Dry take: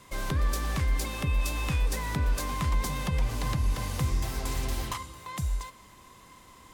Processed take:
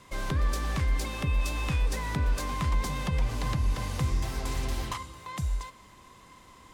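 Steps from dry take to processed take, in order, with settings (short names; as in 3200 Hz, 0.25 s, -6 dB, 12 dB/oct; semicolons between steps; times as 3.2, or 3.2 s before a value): high shelf 11000 Hz -10.5 dB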